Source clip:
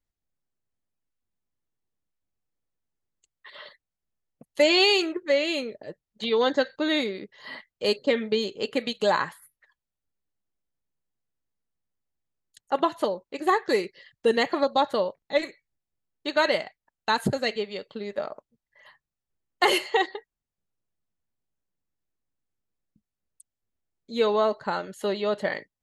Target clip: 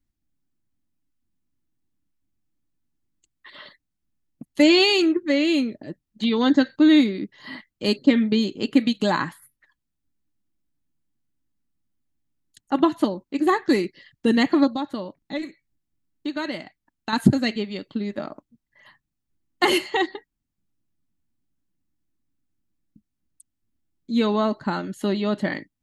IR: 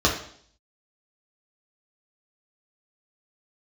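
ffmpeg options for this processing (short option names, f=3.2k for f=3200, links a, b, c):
-filter_complex "[0:a]lowshelf=f=370:t=q:w=3:g=7,asettb=1/sr,asplit=3[a][b][c];[a]atrim=end=14.714[d];[b]atrim=start=14.71:end=17.13,asetpts=PTS-STARTPTS,afade=t=in:d=0.004:c=qsin,afade=t=out:st=2.416:d=0.004:c=qsin,acompressor=threshold=-33dB:ratio=2[e];[c]atrim=start=17.126[f];[d][e]acrossfade=d=0.004:c1=hsin:c2=qsin[g];[g][f]acrossfade=d=0.004:c1=qsin:c2=hsin,volume=1.5dB"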